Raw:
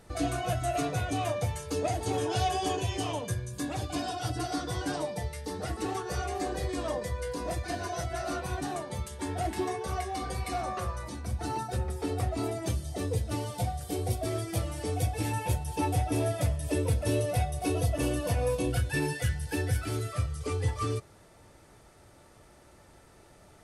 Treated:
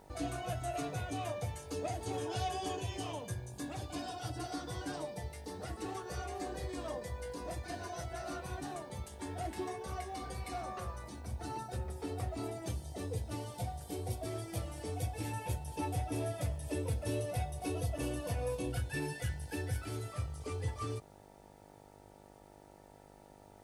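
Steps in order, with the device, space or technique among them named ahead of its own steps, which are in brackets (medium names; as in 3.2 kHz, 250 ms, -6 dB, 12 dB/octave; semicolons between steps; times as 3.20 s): video cassette with head-switching buzz (mains buzz 50 Hz, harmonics 19, -51 dBFS 0 dB/octave; white noise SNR 38 dB); trim -8 dB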